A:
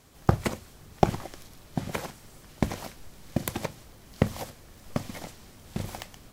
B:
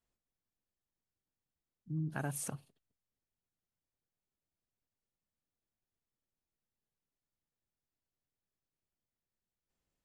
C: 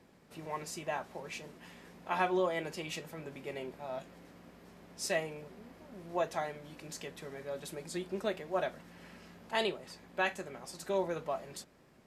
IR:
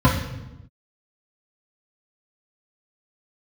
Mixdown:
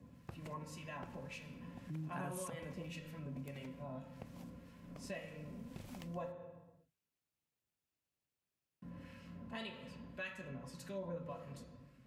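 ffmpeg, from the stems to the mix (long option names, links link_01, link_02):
-filter_complex "[0:a]volume=11dB,asoftclip=hard,volume=-11dB,volume=-15dB,afade=type=in:start_time=5.1:duration=0.6:silence=0.354813[link_01];[1:a]highpass=63,volume=0.5dB[link_02];[2:a]acrossover=split=1300[link_03][link_04];[link_03]aeval=exprs='val(0)*(1-0.7/2+0.7/2*cos(2*PI*1.8*n/s))':channel_layout=same[link_05];[link_04]aeval=exprs='val(0)*(1-0.7/2-0.7/2*cos(2*PI*1.8*n/s))':channel_layout=same[link_06];[link_05][link_06]amix=inputs=2:normalize=0,volume=-8dB,asplit=3[link_07][link_08][link_09];[link_07]atrim=end=6.3,asetpts=PTS-STARTPTS,afade=type=out:start_time=6.296:duration=0.004:curve=hsin[link_10];[link_08]atrim=start=6.3:end=8.82,asetpts=PTS-STARTPTS,volume=0[link_11];[link_09]atrim=start=8.82,asetpts=PTS-STARTPTS,afade=type=in:duration=0.004:curve=hsin[link_12];[link_10][link_11][link_12]concat=n=3:v=0:a=1,asplit=2[link_13][link_14];[link_14]volume=-17dB[link_15];[3:a]atrim=start_sample=2205[link_16];[link_15][link_16]afir=irnorm=-1:irlink=0[link_17];[link_01][link_02][link_13][link_17]amix=inputs=4:normalize=0,equalizer=frequency=2600:width_type=o:width=0.41:gain=5,acompressor=threshold=-47dB:ratio=2"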